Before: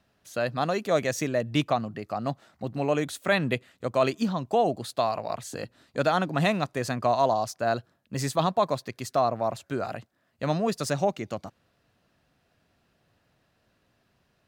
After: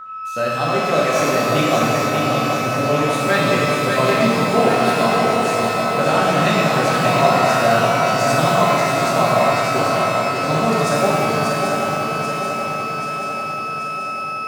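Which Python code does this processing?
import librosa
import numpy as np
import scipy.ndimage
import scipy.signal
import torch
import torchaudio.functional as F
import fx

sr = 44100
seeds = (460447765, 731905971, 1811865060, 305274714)

y = fx.echo_swing(x, sr, ms=784, ratio=3, feedback_pct=59, wet_db=-5)
y = y + 10.0 ** (-35.0 / 20.0) * np.sin(2.0 * np.pi * 1300.0 * np.arange(len(y)) / sr)
y = fx.rev_shimmer(y, sr, seeds[0], rt60_s=1.9, semitones=12, shimmer_db=-8, drr_db=-5.5)
y = y * librosa.db_to_amplitude(1.0)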